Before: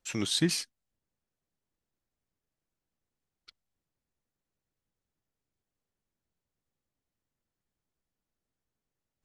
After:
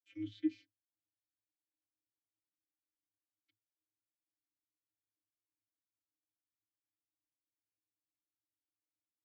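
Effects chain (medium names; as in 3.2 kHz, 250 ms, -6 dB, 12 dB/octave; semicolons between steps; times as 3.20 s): vocoder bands 32, square 105 Hz; vowel filter i; trim +1.5 dB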